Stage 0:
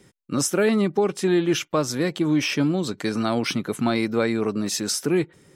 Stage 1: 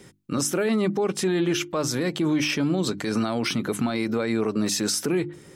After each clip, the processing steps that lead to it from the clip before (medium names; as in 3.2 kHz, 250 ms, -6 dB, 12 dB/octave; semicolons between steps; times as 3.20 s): hum notches 50/100/150/200/250/300/350 Hz; in parallel at 0 dB: compression, threshold -29 dBFS, peak gain reduction 12.5 dB; on the sum: peak limiter -15.5 dBFS, peak gain reduction 8 dB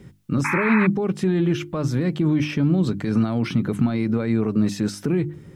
tone controls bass +14 dB, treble -10 dB; word length cut 12-bit, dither triangular; painted sound noise, 0.44–0.87 s, 840–2600 Hz -21 dBFS; trim -3 dB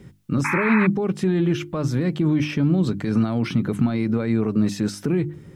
no audible change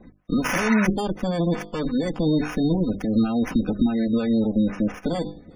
comb filter that takes the minimum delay 4 ms; sample-rate reducer 4 kHz, jitter 0%; spectral gate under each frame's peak -25 dB strong